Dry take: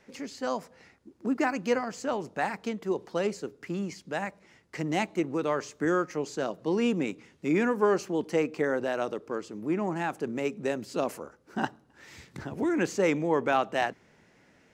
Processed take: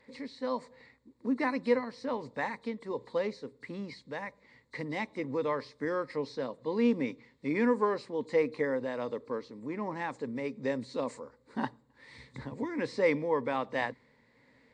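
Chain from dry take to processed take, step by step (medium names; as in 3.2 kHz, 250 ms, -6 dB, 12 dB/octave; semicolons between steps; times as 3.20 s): knee-point frequency compression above 3.4 kHz 1.5:1; rippled EQ curve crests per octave 1, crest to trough 11 dB; tremolo 1.3 Hz, depth 29%; trim -4 dB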